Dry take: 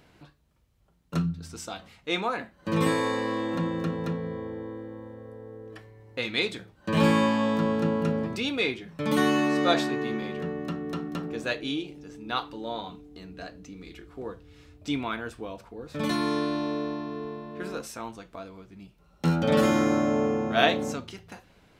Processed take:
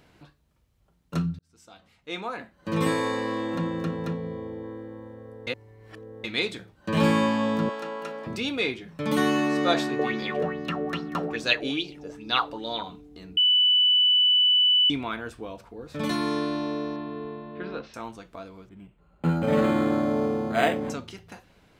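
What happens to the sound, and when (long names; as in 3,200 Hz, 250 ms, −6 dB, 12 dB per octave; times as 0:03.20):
0:01.39–0:02.89: fade in
0:04.14–0:04.64: parametric band 1,500 Hz −6.5 dB 0.61 octaves
0:05.47–0:06.24: reverse
0:07.69–0:08.27: high-pass filter 640 Hz
0:09.99–0:12.83: auto-filter bell 2.4 Hz 520–5,200 Hz +17 dB
0:13.37–0:14.90: beep over 2,980 Hz −16.5 dBFS
0:16.96–0:17.94: Butterworth low-pass 4,200 Hz
0:18.69–0:20.90: linearly interpolated sample-rate reduction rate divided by 8×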